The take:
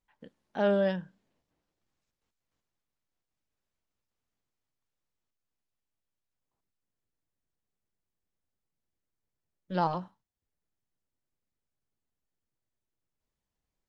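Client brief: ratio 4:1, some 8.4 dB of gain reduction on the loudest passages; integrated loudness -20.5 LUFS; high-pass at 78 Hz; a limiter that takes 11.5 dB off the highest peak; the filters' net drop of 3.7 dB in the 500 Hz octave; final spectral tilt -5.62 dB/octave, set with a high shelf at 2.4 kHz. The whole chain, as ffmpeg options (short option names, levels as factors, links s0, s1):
-af "highpass=78,equalizer=f=500:t=o:g=-5,highshelf=f=2400:g=3,acompressor=threshold=0.02:ratio=4,volume=22.4,alimiter=limit=0.376:level=0:latency=1"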